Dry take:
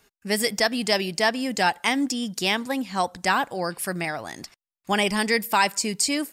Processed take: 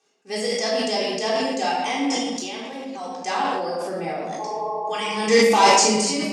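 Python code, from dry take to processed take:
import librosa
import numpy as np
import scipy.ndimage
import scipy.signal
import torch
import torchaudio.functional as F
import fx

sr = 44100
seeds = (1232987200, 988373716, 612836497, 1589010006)

y = fx.level_steps(x, sr, step_db=15, at=(2.02, 3.06))
y = fx.tilt_shelf(y, sr, db=5.5, hz=1100.0, at=(3.77, 4.32))
y = fx.spec_repair(y, sr, seeds[0], start_s=4.42, length_s=0.72, low_hz=360.0, high_hz=1100.0, source='after')
y = fx.leveller(y, sr, passes=3, at=(5.26, 6.01))
y = fx.cabinet(y, sr, low_hz=190.0, low_slope=24, high_hz=8700.0, hz=(190.0, 500.0, 770.0, 1600.0, 3300.0, 6100.0), db=(-3, 7, 6, -6, 3, 8))
y = fx.room_shoebox(y, sr, seeds[1], volume_m3=820.0, walls='mixed', distance_m=3.7)
y = fx.sustainer(y, sr, db_per_s=25.0)
y = y * librosa.db_to_amplitude(-11.5)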